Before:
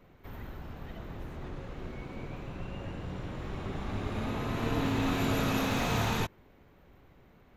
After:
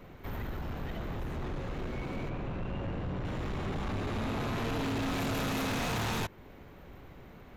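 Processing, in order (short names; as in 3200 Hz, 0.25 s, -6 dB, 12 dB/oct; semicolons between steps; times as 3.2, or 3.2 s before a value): 2.29–3.25 LPF 2200 Hz 6 dB/oct; in parallel at -2.5 dB: compressor, threshold -40 dBFS, peak gain reduction 14 dB; on the sum: soft clip -33.5 dBFS, distortion -7 dB; gain +3.5 dB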